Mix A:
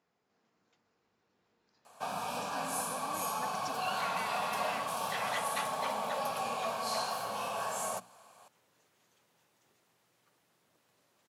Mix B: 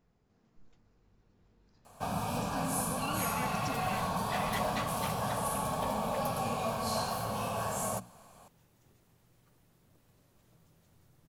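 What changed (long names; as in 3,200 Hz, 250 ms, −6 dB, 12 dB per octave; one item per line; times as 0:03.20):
second sound: entry −0.80 s
master: remove meter weighting curve A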